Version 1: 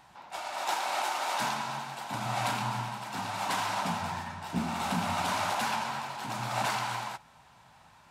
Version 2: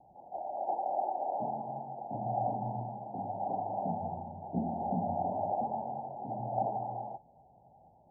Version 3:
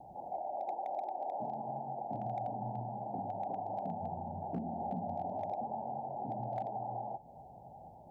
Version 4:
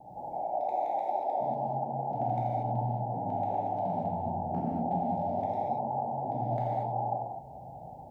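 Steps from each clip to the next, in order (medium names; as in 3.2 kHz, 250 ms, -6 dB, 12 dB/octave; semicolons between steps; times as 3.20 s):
steep low-pass 810 Hz 96 dB/octave; bass shelf 450 Hz -10 dB; trim +6.5 dB
compression 4:1, threshold -46 dBFS, peak gain reduction 16 dB; hard clipper -37.5 dBFS, distortion -32 dB; trim +8 dB
gated-style reverb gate 260 ms flat, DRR -6 dB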